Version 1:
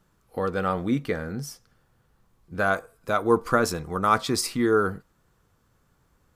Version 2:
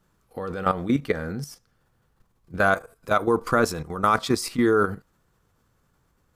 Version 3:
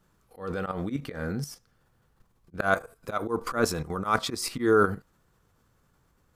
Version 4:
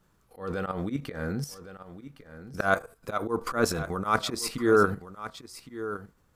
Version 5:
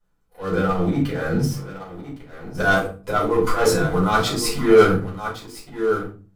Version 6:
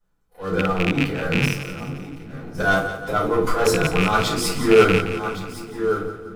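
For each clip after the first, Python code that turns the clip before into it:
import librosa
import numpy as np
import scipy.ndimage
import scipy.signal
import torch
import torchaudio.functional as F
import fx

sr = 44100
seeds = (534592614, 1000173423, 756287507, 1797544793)

y1 = fx.level_steps(x, sr, step_db=12)
y1 = y1 * 10.0 ** (5.5 / 20.0)
y2 = fx.auto_swell(y1, sr, attack_ms=137.0)
y3 = y2 + 10.0 ** (-13.5 / 20.0) * np.pad(y2, (int(1112 * sr / 1000.0), 0))[:len(y2)]
y4 = fx.leveller(y3, sr, passes=3)
y4 = fx.room_shoebox(y4, sr, seeds[0], volume_m3=200.0, walls='furnished', distance_m=4.9)
y4 = y4 * 10.0 ** (-11.0 / 20.0)
y5 = fx.rattle_buzz(y4, sr, strikes_db=-21.0, level_db=-9.0)
y5 = fx.echo_split(y5, sr, split_hz=320.0, low_ms=457, high_ms=174, feedback_pct=52, wet_db=-11)
y5 = y5 * 10.0 ** (-1.0 / 20.0)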